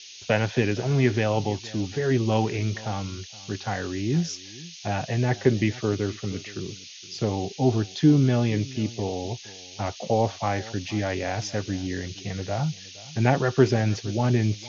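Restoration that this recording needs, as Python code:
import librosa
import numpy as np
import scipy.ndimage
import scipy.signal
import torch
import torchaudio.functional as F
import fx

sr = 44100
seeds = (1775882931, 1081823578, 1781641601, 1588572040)

y = fx.noise_reduce(x, sr, print_start_s=4.35, print_end_s=4.85, reduce_db=27.0)
y = fx.fix_echo_inverse(y, sr, delay_ms=468, level_db=-20.0)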